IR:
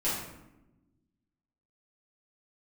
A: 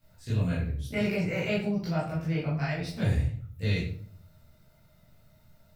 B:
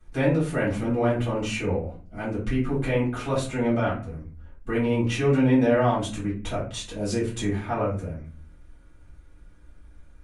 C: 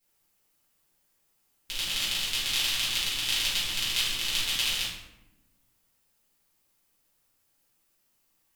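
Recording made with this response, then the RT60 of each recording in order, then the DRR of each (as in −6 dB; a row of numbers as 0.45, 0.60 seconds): C; 0.55, 0.40, 0.95 seconds; −10.0, −9.5, −11.0 decibels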